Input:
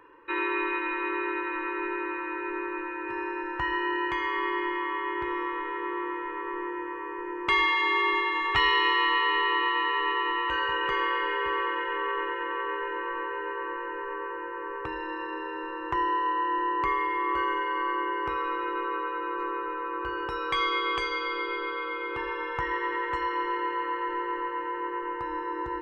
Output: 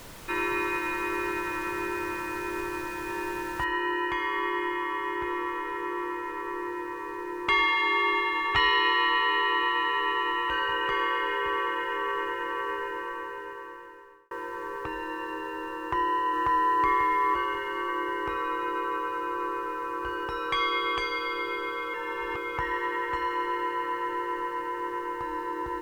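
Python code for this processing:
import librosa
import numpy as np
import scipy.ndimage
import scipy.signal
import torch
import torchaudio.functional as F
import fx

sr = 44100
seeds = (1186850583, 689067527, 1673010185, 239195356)

y = fx.noise_floor_step(x, sr, seeds[0], at_s=3.64, before_db=-45, after_db=-58, tilt_db=3.0)
y = fx.echo_throw(y, sr, start_s=15.79, length_s=1.01, ms=540, feedback_pct=50, wet_db=-1.0)
y = fx.edit(y, sr, fx.fade_out_span(start_s=12.71, length_s=1.6),
    fx.reverse_span(start_s=21.94, length_s=0.64), tone=tone)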